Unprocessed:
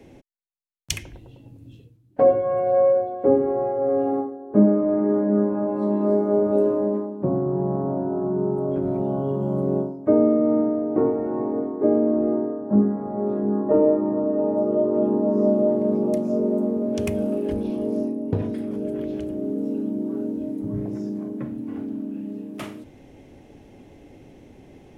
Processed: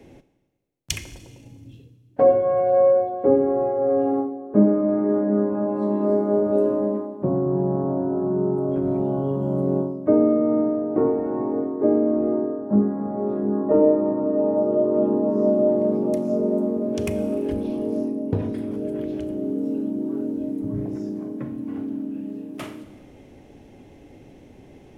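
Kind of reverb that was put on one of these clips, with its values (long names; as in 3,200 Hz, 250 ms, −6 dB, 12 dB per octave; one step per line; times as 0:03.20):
four-comb reverb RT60 1.4 s, combs from 29 ms, DRR 12.5 dB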